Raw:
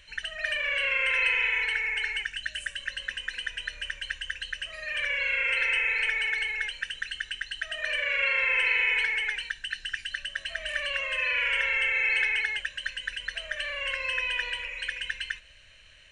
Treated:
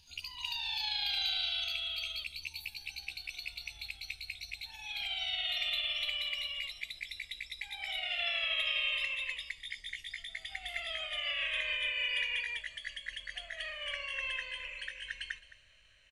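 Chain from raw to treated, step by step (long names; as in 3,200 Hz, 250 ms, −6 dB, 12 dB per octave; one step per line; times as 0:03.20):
pitch glide at a constant tempo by +8 semitones ending unshifted
single-tap delay 215 ms −17.5 dB
level −7 dB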